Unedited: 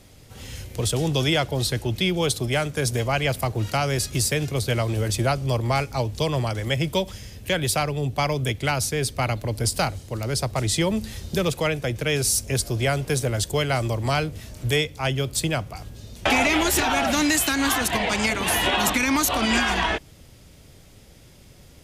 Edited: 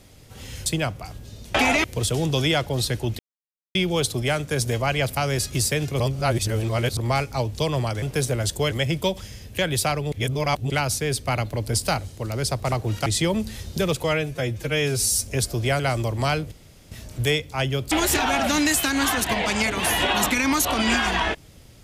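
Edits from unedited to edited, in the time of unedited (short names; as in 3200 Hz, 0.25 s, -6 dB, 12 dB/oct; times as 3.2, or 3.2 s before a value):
2.01 insert silence 0.56 s
3.43–3.77 move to 10.63
4.6–5.57 reverse
8.03–8.61 reverse
11.61–12.42 stretch 1.5×
12.96–13.65 move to 6.62
14.37 insert room tone 0.40 s
15.37–16.55 move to 0.66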